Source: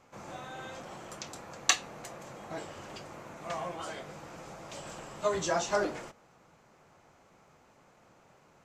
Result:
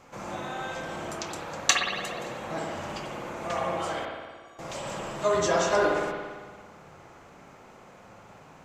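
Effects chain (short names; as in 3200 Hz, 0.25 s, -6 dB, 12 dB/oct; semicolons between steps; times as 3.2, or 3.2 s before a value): in parallel at -2 dB: compressor, threshold -46 dBFS, peak gain reduction 25 dB; 4.05–4.59 on the sum: metallic resonator 340 Hz, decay 0.51 s, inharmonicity 0.03; spring tank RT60 1.5 s, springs 56 ms, chirp 40 ms, DRR -1 dB; gain +2.5 dB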